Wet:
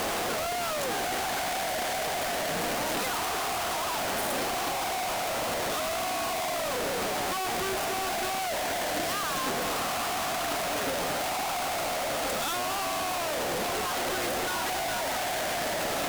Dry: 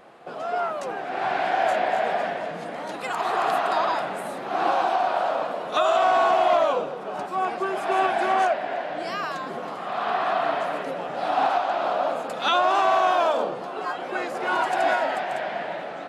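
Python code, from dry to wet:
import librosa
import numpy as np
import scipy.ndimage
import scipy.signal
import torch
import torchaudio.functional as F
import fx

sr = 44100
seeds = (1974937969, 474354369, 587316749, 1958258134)

y = np.sign(x) * np.sqrt(np.mean(np.square(x)))
y = fx.peak_eq(y, sr, hz=270.0, db=-5.0, octaves=0.3)
y = fx.cheby_harmonics(y, sr, harmonics=(5,), levels_db=(-8,), full_scale_db=-21.5)
y = y * librosa.db_to_amplitude(-2.0)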